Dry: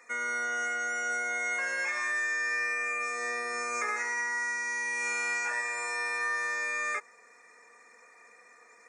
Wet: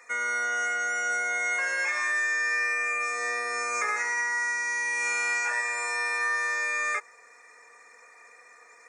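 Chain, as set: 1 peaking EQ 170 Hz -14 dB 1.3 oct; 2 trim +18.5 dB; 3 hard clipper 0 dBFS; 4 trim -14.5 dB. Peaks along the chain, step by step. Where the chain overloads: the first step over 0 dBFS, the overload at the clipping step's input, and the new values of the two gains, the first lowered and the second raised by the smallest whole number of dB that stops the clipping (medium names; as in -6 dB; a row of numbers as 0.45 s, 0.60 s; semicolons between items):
-20.5 dBFS, -2.0 dBFS, -2.0 dBFS, -16.5 dBFS; nothing clips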